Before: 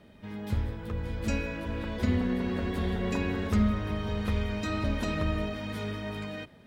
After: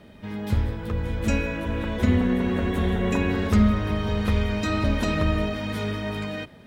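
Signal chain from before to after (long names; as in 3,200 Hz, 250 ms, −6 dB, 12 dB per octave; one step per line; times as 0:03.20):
0:01.02–0:03.29: parametric band 4,700 Hz −6.5 dB → −14 dB 0.28 octaves
level +6.5 dB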